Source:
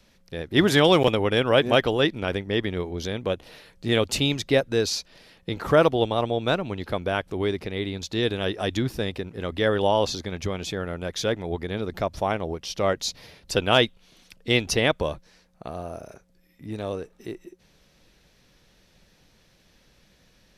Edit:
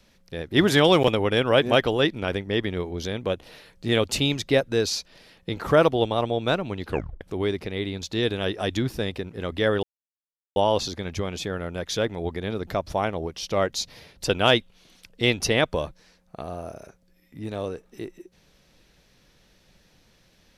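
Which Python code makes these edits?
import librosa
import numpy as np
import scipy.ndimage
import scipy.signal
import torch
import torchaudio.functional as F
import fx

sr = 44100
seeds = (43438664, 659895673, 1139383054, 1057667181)

y = fx.edit(x, sr, fx.tape_stop(start_s=6.87, length_s=0.34),
    fx.insert_silence(at_s=9.83, length_s=0.73), tone=tone)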